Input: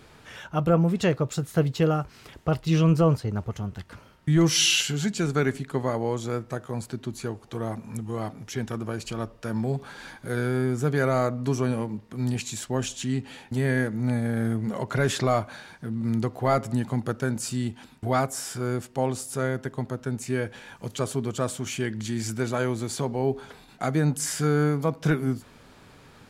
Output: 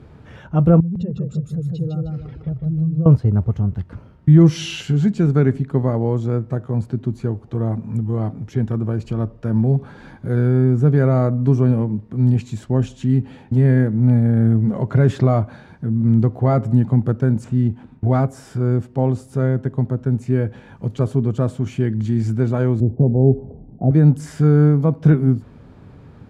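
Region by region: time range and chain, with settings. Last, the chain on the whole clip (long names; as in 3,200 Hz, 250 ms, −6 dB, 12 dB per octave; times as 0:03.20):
0:00.80–0:03.06: expanding power law on the bin magnitudes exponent 2 + downward compressor 5 to 1, threshold −33 dBFS + feedback echo with a swinging delay time 154 ms, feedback 36%, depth 59 cents, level −3 dB
0:17.44–0:18.20: running median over 9 samples + low-pass filter 10,000 Hz 24 dB per octave
0:22.80–0:23.91: Butterworth low-pass 730 Hz + spectral tilt −1.5 dB per octave
whole clip: high-pass filter 76 Hz; spectral tilt −4.5 dB per octave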